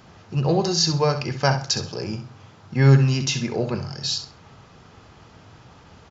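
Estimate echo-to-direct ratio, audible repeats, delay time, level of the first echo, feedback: −10.0 dB, 2, 66 ms, −10.5 dB, 24%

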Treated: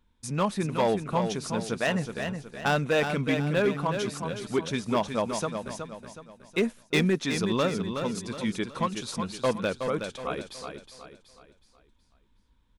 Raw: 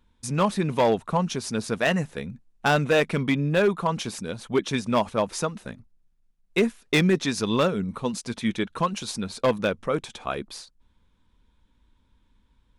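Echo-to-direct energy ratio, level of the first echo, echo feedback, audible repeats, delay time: −6.0 dB, −7.0 dB, 40%, 4, 370 ms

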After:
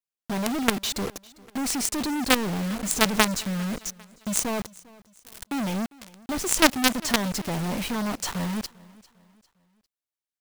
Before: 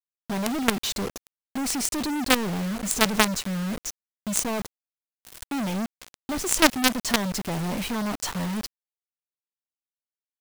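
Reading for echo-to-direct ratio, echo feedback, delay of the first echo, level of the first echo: −22.0 dB, 42%, 400 ms, −23.0 dB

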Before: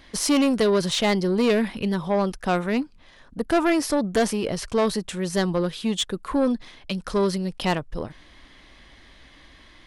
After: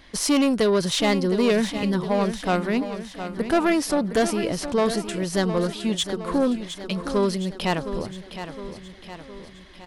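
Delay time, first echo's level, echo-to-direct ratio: 713 ms, −10.5 dB, −9.0 dB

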